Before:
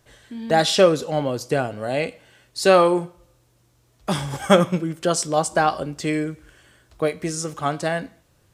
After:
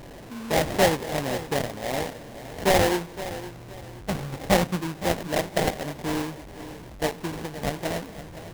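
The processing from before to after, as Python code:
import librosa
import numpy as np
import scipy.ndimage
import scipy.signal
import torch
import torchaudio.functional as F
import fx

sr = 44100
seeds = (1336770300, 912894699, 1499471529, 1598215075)

y = fx.delta_mod(x, sr, bps=64000, step_db=-31.5)
y = fx.sample_hold(y, sr, seeds[0], rate_hz=1300.0, jitter_pct=20)
y = fx.echo_feedback(y, sr, ms=516, feedback_pct=30, wet_db=-14.0)
y = F.gain(torch.from_numpy(y), -5.0).numpy()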